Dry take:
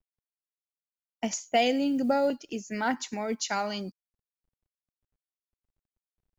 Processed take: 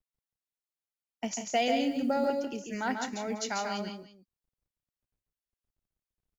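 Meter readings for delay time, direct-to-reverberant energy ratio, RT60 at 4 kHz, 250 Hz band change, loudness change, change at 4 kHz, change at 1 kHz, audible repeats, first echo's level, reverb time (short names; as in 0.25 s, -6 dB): 0.141 s, none, none, -3.0 dB, -2.5 dB, -2.5 dB, -2.5 dB, 2, -5.0 dB, none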